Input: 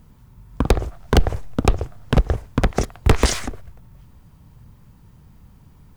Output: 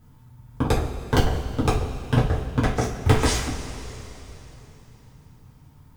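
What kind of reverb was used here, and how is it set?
two-slope reverb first 0.32 s, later 3.6 s, from -18 dB, DRR -6.5 dB; gain -9 dB

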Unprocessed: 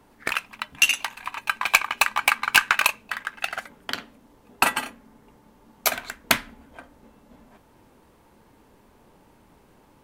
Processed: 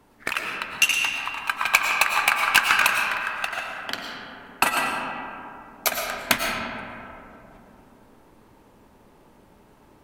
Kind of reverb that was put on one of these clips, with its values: digital reverb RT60 2.8 s, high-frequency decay 0.4×, pre-delay 70 ms, DRR 0.5 dB; gain -1 dB

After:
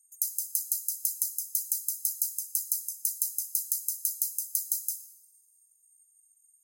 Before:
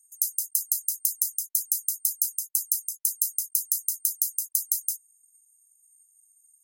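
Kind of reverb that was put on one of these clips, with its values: two-slope reverb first 0.88 s, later 2.7 s, from -24 dB, DRR 9.5 dB; gain -4 dB

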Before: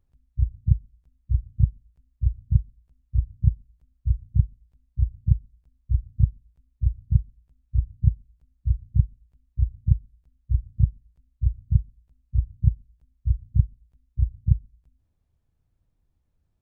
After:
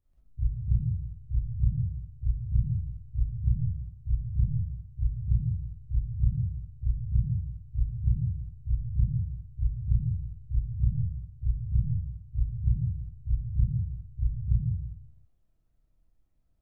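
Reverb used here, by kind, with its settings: digital reverb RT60 0.64 s, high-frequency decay 0.3×, pre-delay 5 ms, DRR -8.5 dB; gain -10.5 dB

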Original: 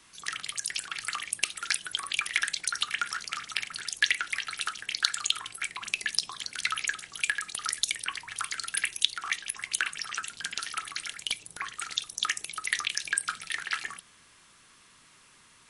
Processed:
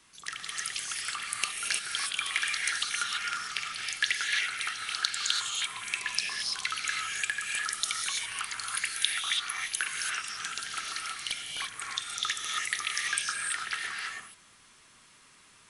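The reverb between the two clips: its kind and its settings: non-linear reverb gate 0.36 s rising, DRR -1 dB; gain -3.5 dB

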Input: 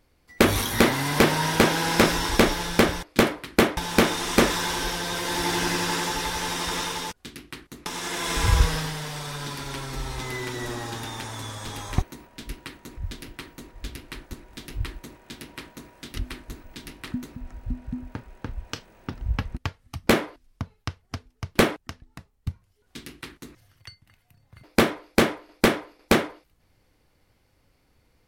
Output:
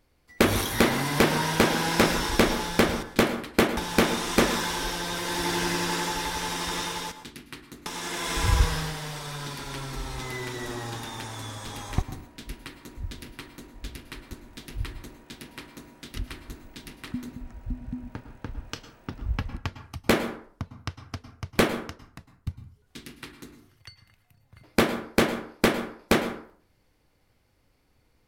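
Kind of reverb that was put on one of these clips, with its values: plate-style reverb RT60 0.5 s, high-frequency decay 0.5×, pre-delay 95 ms, DRR 11 dB; gain -2.5 dB

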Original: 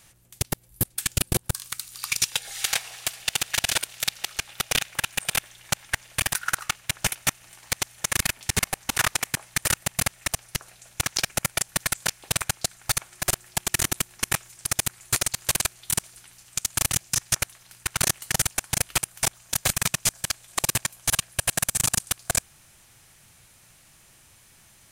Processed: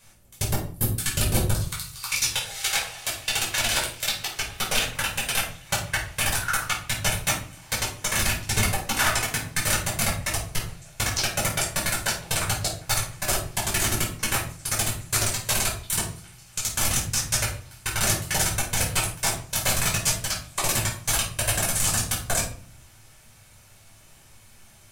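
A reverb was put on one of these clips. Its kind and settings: shoebox room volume 420 m³, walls furnished, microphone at 5.2 m; gain -6 dB

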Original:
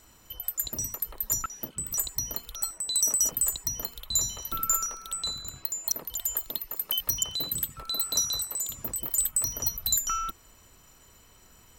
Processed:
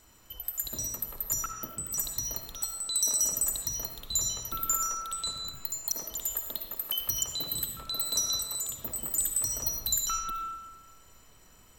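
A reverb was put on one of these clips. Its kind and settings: digital reverb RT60 1.3 s, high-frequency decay 0.65×, pre-delay 30 ms, DRR 4 dB; gain -3 dB

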